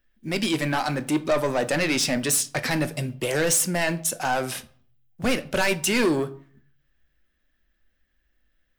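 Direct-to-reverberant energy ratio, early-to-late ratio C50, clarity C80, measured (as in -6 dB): 11.5 dB, 18.5 dB, 23.0 dB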